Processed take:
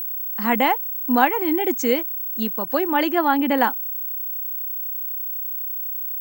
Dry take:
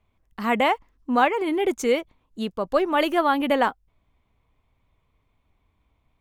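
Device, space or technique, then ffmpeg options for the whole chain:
old television with a line whistle: -filter_complex "[0:a]highpass=f=210:w=0.5412,highpass=f=210:w=1.3066,equalizer=f=410:t=q:w=4:g=-8,equalizer=f=610:t=q:w=4:g=-10,equalizer=f=1.2k:t=q:w=4:g=-9,equalizer=f=3.6k:t=q:w=4:g=-8,lowpass=f=7.4k:w=0.5412,lowpass=f=7.4k:w=1.3066,equalizer=f=2.4k:w=3:g=-6,aeval=exprs='val(0)+0.0282*sin(2*PI*15734*n/s)':c=same,bandreject=f=5.9k:w=26,asettb=1/sr,asplit=3[a][b][c];[a]atrim=end=2.654[d];[b]atrim=start=2.65:end=3.58,asetpts=PTS-STARTPTS,afade=t=in:d=0.004:c=qsin,afade=t=out:st=0.926:d=0.004:c=qsin,adynamicequalizer=threshold=0.00631:dfrequency=3300:dqfactor=0.7:tfrequency=3300:tqfactor=0.7:attack=5:release=100:ratio=0.375:range=3:mode=cutabove:tftype=highshelf[e];[c]atrim=start=3.576[f];[d][e]acrossfade=d=0.004:c1=hsin:c2=qsin[g];[g][f]acrossfade=d=0.004:c1=qsin:c2=hsin,volume=6dB"

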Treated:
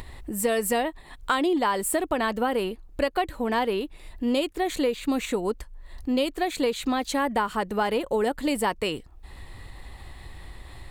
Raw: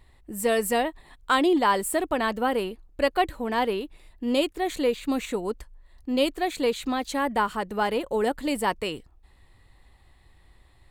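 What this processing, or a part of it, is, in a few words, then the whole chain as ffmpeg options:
upward and downward compression: -af "acompressor=mode=upward:threshold=-33dB:ratio=2.5,acompressor=threshold=-24dB:ratio=6,volume=3.5dB"

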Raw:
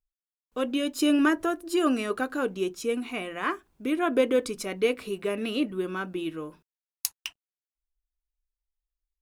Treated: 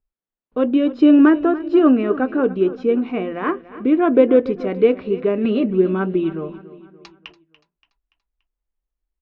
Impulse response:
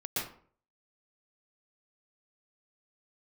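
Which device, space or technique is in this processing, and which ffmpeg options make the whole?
phone in a pocket: -filter_complex "[0:a]lowpass=3.6k,lowpass=f=5.1k:w=0.5412,lowpass=f=5.1k:w=1.3066,equalizer=f=270:t=o:w=2.8:g=6,highshelf=f=2.1k:g=-11.5,asplit=3[a][b][c];[a]afade=t=out:st=1.91:d=0.02[d];[b]lowpass=f=3.4k:w=0.5412,lowpass=f=3.4k:w=1.3066,afade=t=in:st=1.91:d=0.02,afade=t=out:st=2.42:d=0.02[e];[c]afade=t=in:st=2.42:d=0.02[f];[d][e][f]amix=inputs=3:normalize=0,asettb=1/sr,asplit=3[g][h][i];[g]atrim=end=5.444[j];[h]atrim=start=5.44:end=7.17,asetpts=PTS-STARTPTS,afade=t=in:d=0.004:c=qsin,afade=t=out:st=1.726:d=0.004:c=qsin,aecho=1:1:5.1:0.58,atrim=end_sample=76293[k];[i]atrim=start=7.166[l];[j][k]acrossfade=d=0.004:c1=hsin:c2=qsin[m];[m][l]acrossfade=d=0.004:c1=qsin:c2=hsin,aecho=1:1:287|574|861|1148:0.15|0.0703|0.0331|0.0155,volume=6dB"

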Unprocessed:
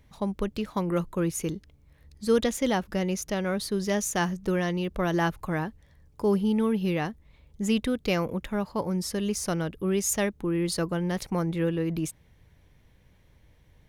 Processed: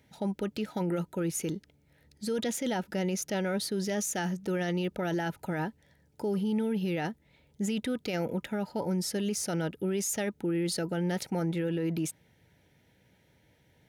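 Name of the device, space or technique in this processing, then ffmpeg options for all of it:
PA system with an anti-feedback notch: -af "highpass=140,asuperstop=centerf=1100:order=20:qfactor=4.7,alimiter=limit=-23.5dB:level=0:latency=1:release=12"

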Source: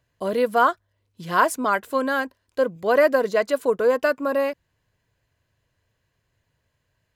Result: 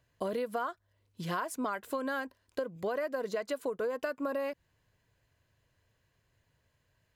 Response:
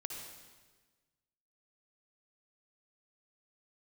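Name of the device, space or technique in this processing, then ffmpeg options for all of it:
serial compression, peaks first: -af "acompressor=threshold=-25dB:ratio=6,acompressor=threshold=-32dB:ratio=2,volume=-1.5dB"

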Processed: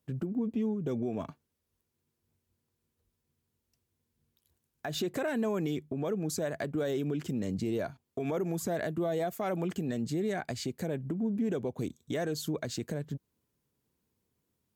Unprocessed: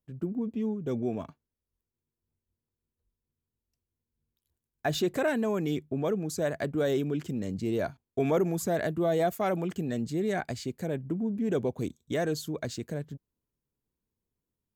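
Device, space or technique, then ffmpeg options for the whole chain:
podcast mastering chain: -af "highpass=76,deesser=0.65,acompressor=threshold=-40dB:ratio=2.5,alimiter=level_in=7.5dB:limit=-24dB:level=0:latency=1:release=148,volume=-7.5dB,volume=8.5dB" -ar 48000 -c:a libmp3lame -b:a 96k

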